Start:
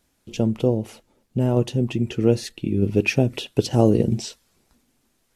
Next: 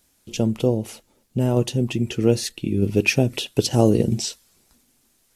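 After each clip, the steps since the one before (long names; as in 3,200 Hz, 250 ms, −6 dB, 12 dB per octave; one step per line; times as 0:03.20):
high-shelf EQ 3,900 Hz +9.5 dB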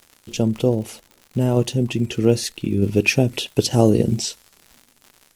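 surface crackle 120 per second −35 dBFS
level +1.5 dB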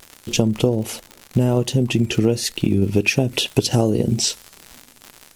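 downward compressor 6 to 1, threshold −22 dBFS, peak gain reduction 13 dB
pitch vibrato 1.3 Hz 33 cents
level +8.5 dB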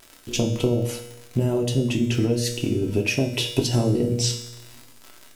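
tuned comb filter 120 Hz, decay 0.94 s, harmonics all, mix 80%
convolution reverb RT60 0.40 s, pre-delay 3 ms, DRR 3 dB
level +5.5 dB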